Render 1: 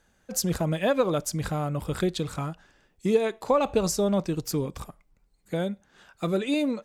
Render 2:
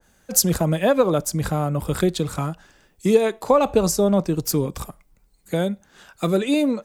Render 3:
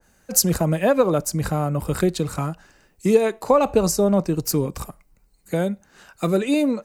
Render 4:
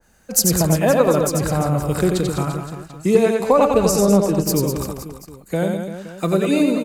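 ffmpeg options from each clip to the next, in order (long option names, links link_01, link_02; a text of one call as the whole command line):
ffmpeg -i in.wav -filter_complex "[0:a]acrossover=split=180|2600[link_01][link_02][link_03];[link_03]crystalizer=i=1:c=0[link_04];[link_01][link_02][link_04]amix=inputs=3:normalize=0,adynamicequalizer=threshold=0.00794:dfrequency=1700:dqfactor=0.7:tfrequency=1700:tqfactor=0.7:attack=5:release=100:ratio=0.375:range=3.5:mode=cutabove:tftype=highshelf,volume=6dB" out.wav
ffmpeg -i in.wav -af "bandreject=frequency=3400:width=6.9" out.wav
ffmpeg -i in.wav -af "asoftclip=type=hard:threshold=-6dB,aecho=1:1:90|202.5|343.1|518.9|738.6:0.631|0.398|0.251|0.158|0.1,volume=1dB" out.wav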